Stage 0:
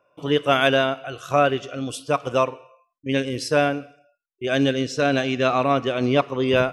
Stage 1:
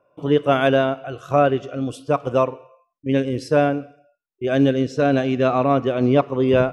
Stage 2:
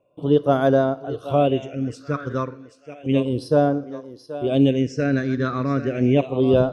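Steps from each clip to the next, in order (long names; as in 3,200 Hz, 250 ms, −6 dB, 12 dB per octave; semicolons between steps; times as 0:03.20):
tilt shelving filter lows +6.5 dB, about 1,400 Hz; level −2 dB
feedback echo with a high-pass in the loop 780 ms, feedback 38%, high-pass 390 Hz, level −11.5 dB; all-pass phaser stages 6, 0.32 Hz, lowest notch 740–2,600 Hz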